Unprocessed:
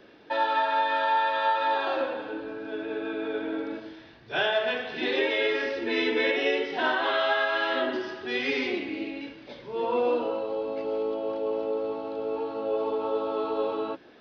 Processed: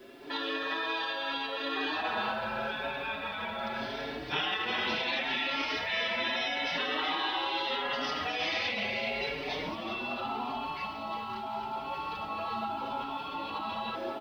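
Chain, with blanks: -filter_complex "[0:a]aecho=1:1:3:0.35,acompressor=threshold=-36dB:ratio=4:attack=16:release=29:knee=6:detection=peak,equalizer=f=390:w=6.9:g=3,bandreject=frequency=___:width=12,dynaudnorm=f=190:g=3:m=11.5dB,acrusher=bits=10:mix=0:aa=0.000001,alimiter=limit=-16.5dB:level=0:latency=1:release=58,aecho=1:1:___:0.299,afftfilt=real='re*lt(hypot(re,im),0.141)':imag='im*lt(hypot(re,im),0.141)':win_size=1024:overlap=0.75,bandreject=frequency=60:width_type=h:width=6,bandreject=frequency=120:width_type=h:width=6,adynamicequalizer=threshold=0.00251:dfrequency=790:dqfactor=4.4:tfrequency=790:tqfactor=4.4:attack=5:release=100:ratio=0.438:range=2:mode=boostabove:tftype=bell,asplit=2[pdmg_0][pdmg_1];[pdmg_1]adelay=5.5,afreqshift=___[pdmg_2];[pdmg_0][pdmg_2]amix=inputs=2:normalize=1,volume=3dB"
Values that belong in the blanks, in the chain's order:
1.6k, 380, 0.78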